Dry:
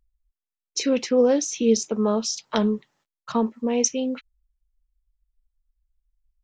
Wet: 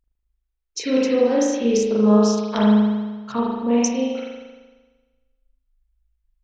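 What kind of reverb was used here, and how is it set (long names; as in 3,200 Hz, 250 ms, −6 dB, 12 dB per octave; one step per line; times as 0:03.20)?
spring reverb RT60 1.3 s, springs 38 ms, chirp 40 ms, DRR −6 dB
level −3 dB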